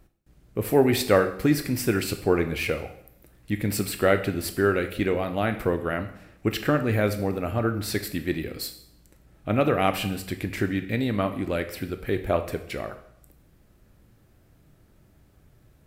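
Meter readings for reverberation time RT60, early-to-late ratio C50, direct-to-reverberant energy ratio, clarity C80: 0.70 s, 11.5 dB, 7.5 dB, 14.5 dB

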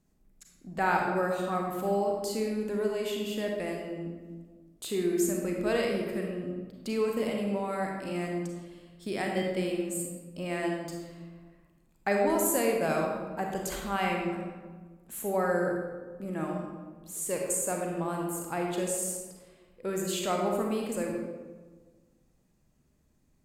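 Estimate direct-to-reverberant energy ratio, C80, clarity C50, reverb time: 0.0 dB, 3.5 dB, 1.5 dB, 1.4 s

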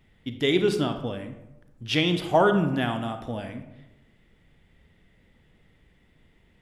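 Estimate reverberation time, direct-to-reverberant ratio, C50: 0.95 s, 7.0 dB, 9.0 dB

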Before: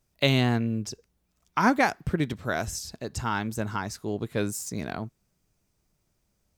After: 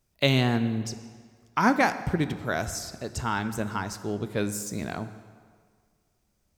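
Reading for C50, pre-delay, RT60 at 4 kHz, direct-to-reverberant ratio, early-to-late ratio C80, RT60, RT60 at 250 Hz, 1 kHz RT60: 12.5 dB, 11 ms, 1.4 s, 11.0 dB, 13.5 dB, 1.8 s, 1.7 s, 1.8 s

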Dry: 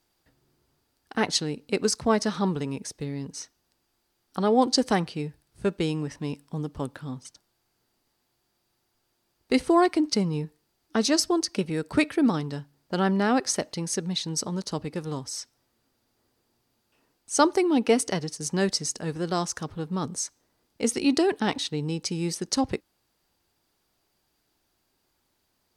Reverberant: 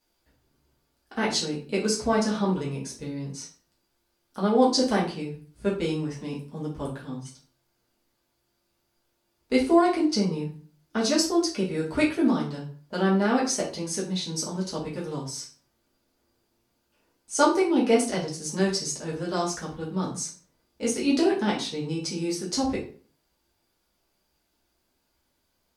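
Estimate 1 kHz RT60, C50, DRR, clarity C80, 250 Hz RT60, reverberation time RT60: 0.40 s, 7.5 dB, -6.0 dB, 12.5 dB, 0.50 s, 0.45 s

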